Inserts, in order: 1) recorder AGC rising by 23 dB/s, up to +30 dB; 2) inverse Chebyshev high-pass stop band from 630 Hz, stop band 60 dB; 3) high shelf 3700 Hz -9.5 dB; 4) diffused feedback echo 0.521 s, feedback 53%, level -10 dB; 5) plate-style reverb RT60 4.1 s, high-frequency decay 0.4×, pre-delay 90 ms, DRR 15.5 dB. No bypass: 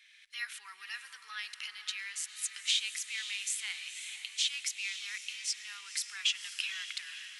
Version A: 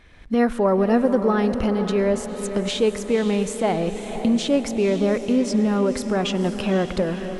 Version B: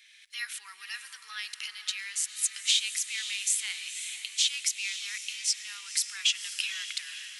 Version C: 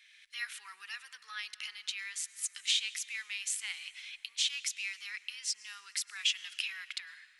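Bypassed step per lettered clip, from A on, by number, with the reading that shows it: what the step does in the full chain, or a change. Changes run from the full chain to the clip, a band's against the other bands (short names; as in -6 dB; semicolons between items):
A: 2, 1 kHz band +27.0 dB; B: 3, 8 kHz band +5.0 dB; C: 4, echo-to-direct -7.5 dB to -15.5 dB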